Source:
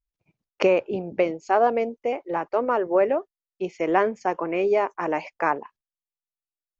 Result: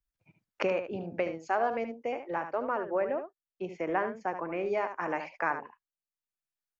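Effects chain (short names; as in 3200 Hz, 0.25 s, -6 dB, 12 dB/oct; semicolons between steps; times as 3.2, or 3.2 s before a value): 2.52–4.66 high shelf 2900 Hz -10 dB; spectral noise reduction 6 dB; fifteen-band EQ 100 Hz +6 dB, 400 Hz -4 dB, 1600 Hz +5 dB; echo 74 ms -9.5 dB; three-band squash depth 40%; gain -8 dB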